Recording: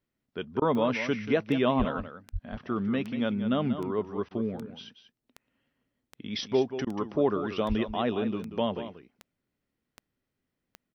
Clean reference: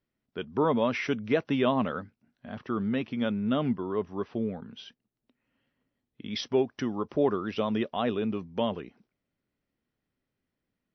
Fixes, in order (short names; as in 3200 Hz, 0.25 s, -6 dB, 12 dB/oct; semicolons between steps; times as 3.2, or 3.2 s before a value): de-click; 1.78–1.9 HPF 140 Hz 24 dB/oct; 2.32–2.44 HPF 140 Hz 24 dB/oct; 7.68–7.8 HPF 140 Hz 24 dB/oct; interpolate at 0.6/4.29/6.85, 17 ms; inverse comb 0.186 s -11 dB